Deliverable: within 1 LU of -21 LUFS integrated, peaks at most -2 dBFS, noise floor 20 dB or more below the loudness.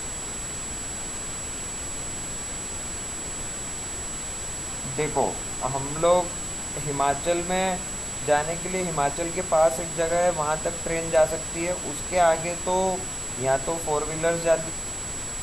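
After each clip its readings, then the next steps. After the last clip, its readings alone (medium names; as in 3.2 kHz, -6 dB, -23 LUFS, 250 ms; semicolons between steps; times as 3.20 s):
steady tone 7.8 kHz; tone level -32 dBFS; noise floor -33 dBFS; noise floor target -46 dBFS; loudness -26.0 LUFS; peak level -9.0 dBFS; loudness target -21.0 LUFS
-> band-stop 7.8 kHz, Q 30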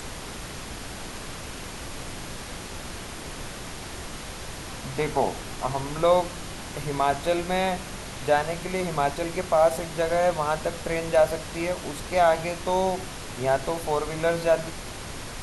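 steady tone not found; noise floor -38 dBFS; noise floor target -48 dBFS
-> noise print and reduce 10 dB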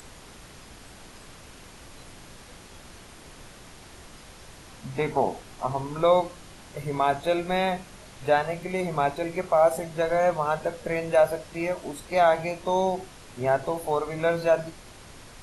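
noise floor -48 dBFS; loudness -26.0 LUFS; peak level -9.5 dBFS; loudness target -21.0 LUFS
-> trim +5 dB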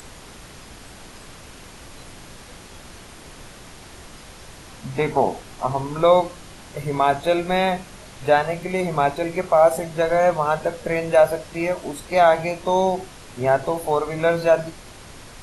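loudness -21.0 LUFS; peak level -4.5 dBFS; noise floor -43 dBFS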